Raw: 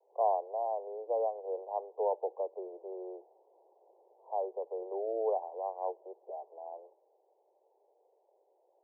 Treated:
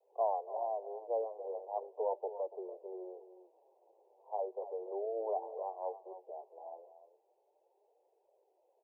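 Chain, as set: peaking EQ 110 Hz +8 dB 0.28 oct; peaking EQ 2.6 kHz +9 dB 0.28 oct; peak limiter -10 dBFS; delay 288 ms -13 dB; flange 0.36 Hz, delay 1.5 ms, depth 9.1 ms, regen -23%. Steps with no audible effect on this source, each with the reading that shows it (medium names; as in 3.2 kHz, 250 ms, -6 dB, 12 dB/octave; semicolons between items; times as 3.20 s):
peaking EQ 110 Hz: input has nothing below 320 Hz; peaking EQ 2.6 kHz: input has nothing above 1.1 kHz; peak limiter -10 dBFS: peak at its input -18.0 dBFS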